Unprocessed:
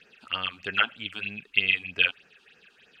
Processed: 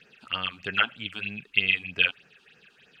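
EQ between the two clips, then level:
parametric band 140 Hz +7 dB 0.9 octaves
0.0 dB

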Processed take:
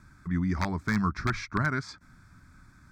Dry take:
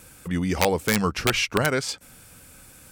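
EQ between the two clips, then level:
high-frequency loss of the air 200 metres
parametric band 790 Hz −10.5 dB 0.38 octaves
phaser with its sweep stopped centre 1,200 Hz, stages 4
0.0 dB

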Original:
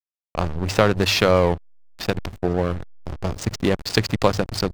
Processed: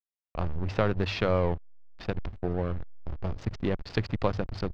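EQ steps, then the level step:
high-frequency loss of the air 220 metres
low-shelf EQ 67 Hz +10.5 dB
−9.0 dB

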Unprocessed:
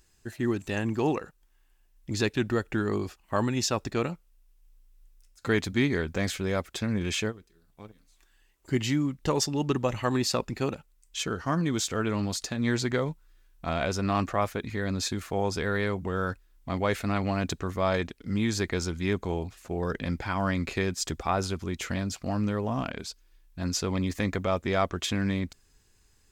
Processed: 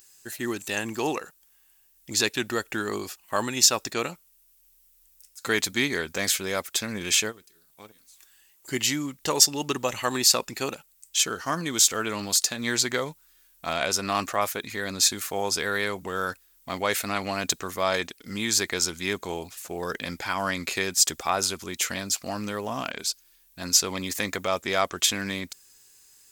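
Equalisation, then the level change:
RIAA equalisation recording
+2.5 dB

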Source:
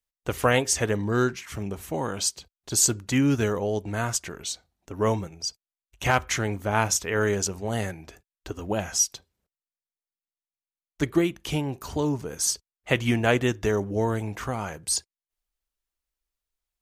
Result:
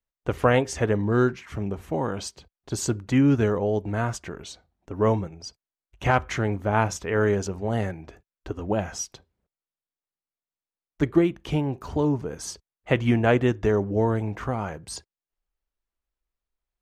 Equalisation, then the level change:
low-pass filter 1,300 Hz 6 dB per octave
+3.0 dB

